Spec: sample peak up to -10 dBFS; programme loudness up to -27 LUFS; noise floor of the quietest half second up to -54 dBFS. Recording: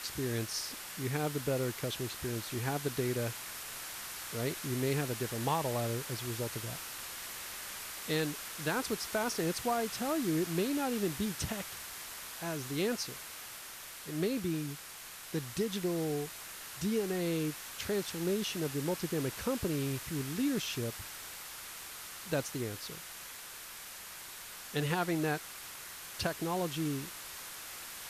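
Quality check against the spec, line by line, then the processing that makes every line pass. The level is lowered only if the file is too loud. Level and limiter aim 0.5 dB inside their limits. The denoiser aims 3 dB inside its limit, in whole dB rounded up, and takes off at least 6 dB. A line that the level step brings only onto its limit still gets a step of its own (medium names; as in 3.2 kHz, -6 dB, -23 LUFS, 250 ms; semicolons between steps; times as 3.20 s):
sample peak -18.0 dBFS: pass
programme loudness -36.0 LUFS: pass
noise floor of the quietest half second -48 dBFS: fail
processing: noise reduction 9 dB, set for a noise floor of -48 dBFS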